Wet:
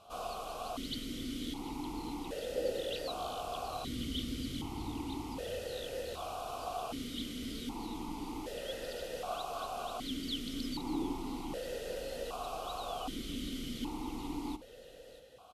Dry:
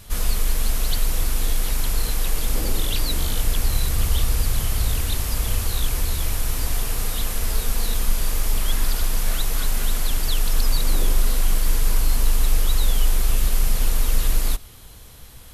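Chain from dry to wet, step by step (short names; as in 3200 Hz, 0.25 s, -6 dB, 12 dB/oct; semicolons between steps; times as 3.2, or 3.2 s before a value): bell 2300 Hz -14.5 dB 0.44 oct; notch 1700 Hz, Q 5; on a send: echo 0.637 s -15 dB; on the sum: vowel sequencer 1.3 Hz; gain +7.5 dB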